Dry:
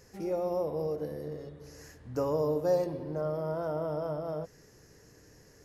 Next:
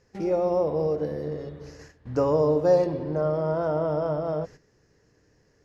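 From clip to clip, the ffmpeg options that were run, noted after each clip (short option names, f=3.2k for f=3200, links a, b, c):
-af "lowpass=4.9k,agate=range=-13dB:threshold=-50dB:ratio=16:detection=peak,volume=7.5dB"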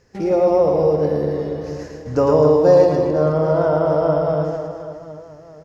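-af "aecho=1:1:110|264|479.6|781.4|1204:0.631|0.398|0.251|0.158|0.1,volume=6.5dB"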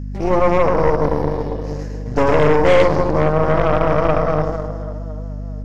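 -af "aeval=exprs='0.891*(cos(1*acos(clip(val(0)/0.891,-1,1)))-cos(1*PI/2))+0.158*(cos(8*acos(clip(val(0)/0.891,-1,1)))-cos(8*PI/2))':c=same,aeval=exprs='val(0)+0.0631*(sin(2*PI*50*n/s)+sin(2*PI*2*50*n/s)/2+sin(2*PI*3*50*n/s)/3+sin(2*PI*4*50*n/s)/4+sin(2*PI*5*50*n/s)/5)':c=same,volume=-1.5dB"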